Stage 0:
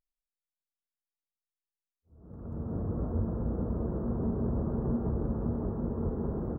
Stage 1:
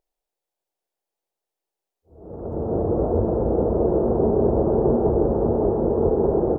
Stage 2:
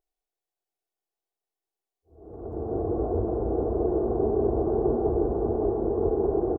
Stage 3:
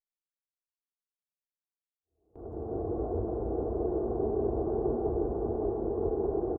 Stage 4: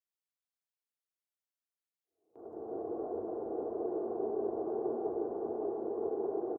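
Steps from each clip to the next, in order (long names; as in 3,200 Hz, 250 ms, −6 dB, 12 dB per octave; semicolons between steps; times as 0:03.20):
flat-topped bell 540 Hz +13 dB; level +6 dB
comb filter 2.7 ms, depth 52%; level −7 dB
noise gate with hold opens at −33 dBFS; level −5.5 dB
high-pass filter 320 Hz 12 dB per octave; level −3 dB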